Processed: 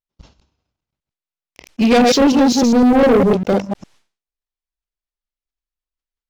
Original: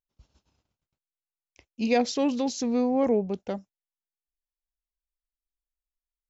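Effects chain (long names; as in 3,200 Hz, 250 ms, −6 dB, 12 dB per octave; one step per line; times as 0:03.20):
delay that plays each chunk backwards 101 ms, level −3 dB
low-pass filter 5,600 Hz 12 dB per octave
leveller curve on the samples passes 3
level that may fall only so fast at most 150 dB per second
level +5 dB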